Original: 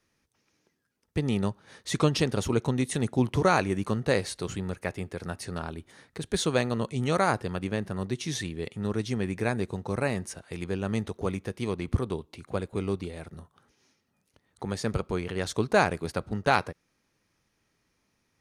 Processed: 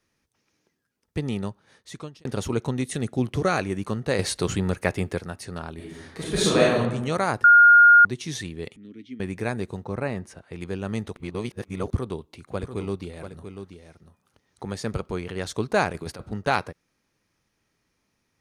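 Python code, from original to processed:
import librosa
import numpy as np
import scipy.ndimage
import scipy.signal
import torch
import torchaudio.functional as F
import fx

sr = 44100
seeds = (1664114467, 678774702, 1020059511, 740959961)

y = fx.peak_eq(x, sr, hz=940.0, db=-12.0, octaves=0.2, at=(2.85, 3.61))
y = fx.reverb_throw(y, sr, start_s=5.75, length_s=1.03, rt60_s=0.89, drr_db=-7.0)
y = fx.vowel_filter(y, sr, vowel='i', at=(8.76, 9.2))
y = fx.high_shelf(y, sr, hz=4100.0, db=-12.0, at=(9.84, 10.61))
y = fx.echo_single(y, sr, ms=689, db=-9.0, at=(12.58, 15.16), fade=0.02)
y = fx.over_compress(y, sr, threshold_db=-32.0, ratio=-0.5, at=(15.9, 16.31))
y = fx.edit(y, sr, fx.fade_out_span(start_s=1.18, length_s=1.07),
    fx.clip_gain(start_s=4.19, length_s=1.01, db=8.0),
    fx.bleep(start_s=7.44, length_s=0.61, hz=1420.0, db=-9.0),
    fx.reverse_span(start_s=11.16, length_s=0.77), tone=tone)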